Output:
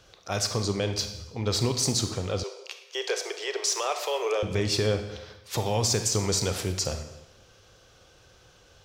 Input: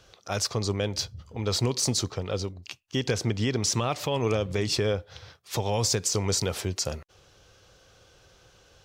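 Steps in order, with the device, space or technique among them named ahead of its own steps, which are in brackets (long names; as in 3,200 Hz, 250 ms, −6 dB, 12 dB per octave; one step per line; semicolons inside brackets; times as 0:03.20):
saturated reverb return (on a send at −6 dB: convolution reverb RT60 0.95 s, pre-delay 28 ms + soft clipping −19.5 dBFS, distortion −20 dB)
0:02.43–0:04.43: on the sum: Butterworth high-pass 380 Hz 72 dB per octave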